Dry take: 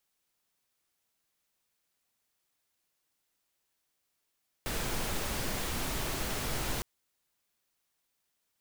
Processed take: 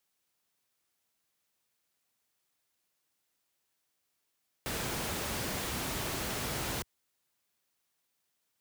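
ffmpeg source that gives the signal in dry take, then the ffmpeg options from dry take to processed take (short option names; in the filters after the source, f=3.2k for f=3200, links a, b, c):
-f lavfi -i "anoisesrc=c=pink:a=0.108:d=2.16:r=44100:seed=1"
-af "highpass=62"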